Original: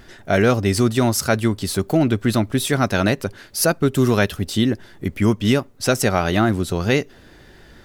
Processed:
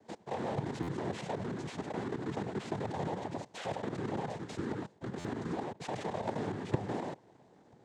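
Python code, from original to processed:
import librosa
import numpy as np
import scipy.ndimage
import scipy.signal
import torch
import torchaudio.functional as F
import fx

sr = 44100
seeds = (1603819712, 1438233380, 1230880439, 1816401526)

y = fx.bit_reversed(x, sr, seeds[0], block=32)
y = fx.peak_eq(y, sr, hz=560.0, db=10.5, octaves=0.86)
y = 10.0 ** (-17.0 / 20.0) * np.tanh(y / 10.0 ** (-17.0 / 20.0))
y = y + 10.0 ** (-12.0 / 20.0) * np.pad(y, (int(99 * sr / 1000.0), 0))[:len(y)]
y = fx.level_steps(y, sr, step_db=21)
y = scipy.signal.sosfilt(scipy.signal.butter(2, 5600.0, 'lowpass', fs=sr, output='sos'), y)
y = fx.over_compress(y, sr, threshold_db=-31.0, ratio=-1.0)
y = fx.noise_vocoder(y, sr, seeds[1], bands=6)
y = fx.high_shelf(y, sr, hz=3400.0, db=-9.5)
y = fx.buffer_glitch(y, sr, at_s=(0.82, 5.19), block=512, repeats=4)
y = y * 10.0 ** (-2.5 / 20.0)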